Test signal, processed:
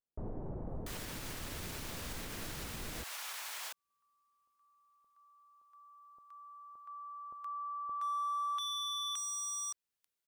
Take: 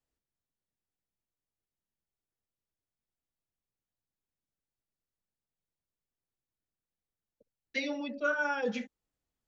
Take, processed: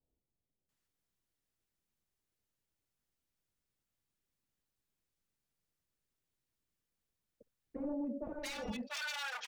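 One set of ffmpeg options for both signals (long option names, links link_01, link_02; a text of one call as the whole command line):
ffmpeg -i in.wav -filter_complex "[0:a]aeval=exprs='0.0237*(abs(mod(val(0)/0.0237+3,4)-2)-1)':channel_layout=same,acrossover=split=770[link_01][link_02];[link_02]adelay=690[link_03];[link_01][link_03]amix=inputs=2:normalize=0,alimiter=level_in=13dB:limit=-24dB:level=0:latency=1:release=253,volume=-13dB,volume=4.5dB" out.wav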